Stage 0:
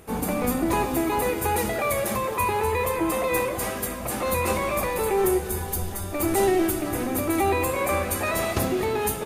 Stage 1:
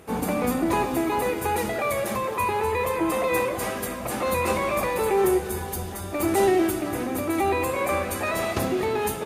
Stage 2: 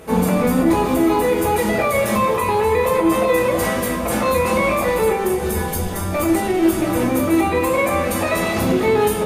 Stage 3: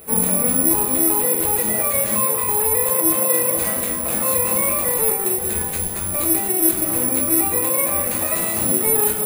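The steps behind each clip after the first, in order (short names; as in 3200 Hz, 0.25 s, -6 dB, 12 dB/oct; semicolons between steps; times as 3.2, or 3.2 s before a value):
HPF 100 Hz 6 dB/oct; high shelf 7900 Hz -7 dB; vocal rider 2 s
limiter -19 dBFS, peak gain reduction 8.5 dB; shoebox room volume 130 m³, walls furnished, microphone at 1.5 m; gain +5.5 dB
careless resampling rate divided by 4×, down none, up zero stuff; gain -7.5 dB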